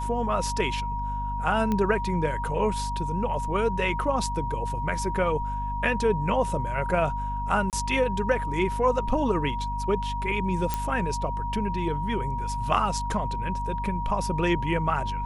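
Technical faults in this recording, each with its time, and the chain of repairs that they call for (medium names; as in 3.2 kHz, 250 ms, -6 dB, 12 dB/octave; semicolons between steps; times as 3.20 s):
hum 50 Hz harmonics 5 -32 dBFS
whine 950 Hz -30 dBFS
1.72 s: pop -15 dBFS
7.70–7.73 s: dropout 28 ms
10.74 s: pop -11 dBFS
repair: de-click; de-hum 50 Hz, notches 5; band-stop 950 Hz, Q 30; interpolate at 7.70 s, 28 ms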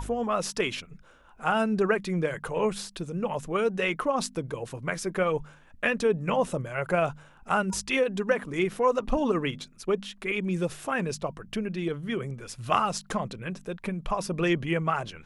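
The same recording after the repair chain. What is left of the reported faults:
nothing left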